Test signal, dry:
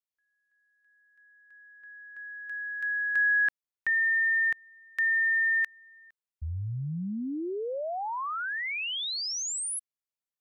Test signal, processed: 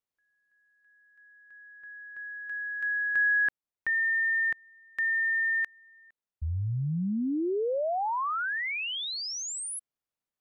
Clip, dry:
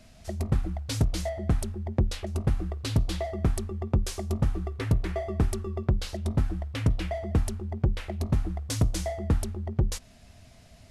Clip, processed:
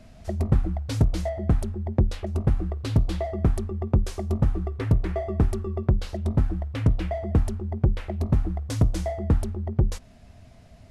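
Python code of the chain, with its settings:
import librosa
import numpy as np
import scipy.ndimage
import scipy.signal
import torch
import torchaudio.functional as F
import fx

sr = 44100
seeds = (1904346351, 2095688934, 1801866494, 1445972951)

p1 = fx.high_shelf(x, sr, hz=2100.0, db=-10.0)
p2 = fx.rider(p1, sr, range_db=5, speed_s=2.0)
p3 = p1 + (p2 * 10.0 ** (2.0 / 20.0))
y = p3 * 10.0 ** (-3.5 / 20.0)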